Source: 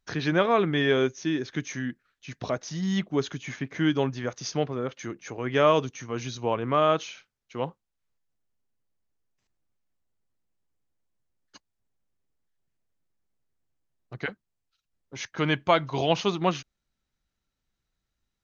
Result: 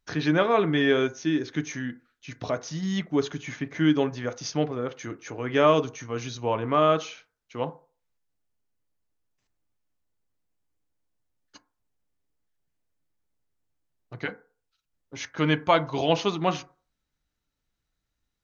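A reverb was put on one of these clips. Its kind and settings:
feedback delay network reverb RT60 0.39 s, low-frequency decay 0.75×, high-frequency decay 0.3×, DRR 9.5 dB

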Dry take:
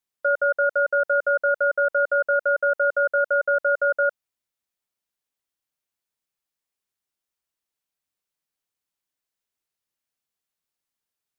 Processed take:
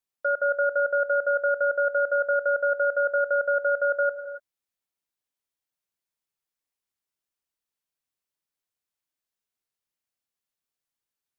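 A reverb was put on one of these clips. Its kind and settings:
reverb whose tail is shaped and stops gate 310 ms rising, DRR 10 dB
level −3.5 dB

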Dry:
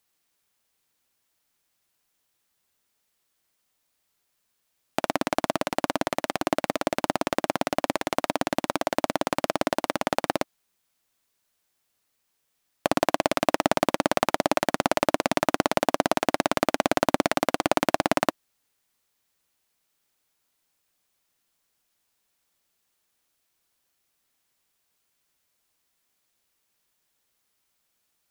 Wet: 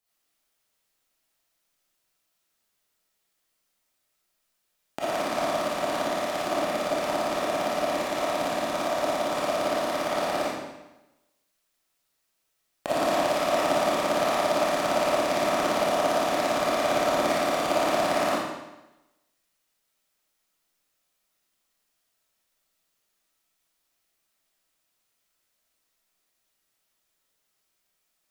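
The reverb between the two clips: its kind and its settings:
comb and all-pass reverb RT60 1 s, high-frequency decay 0.95×, pre-delay 5 ms, DRR −9.5 dB
level −10 dB

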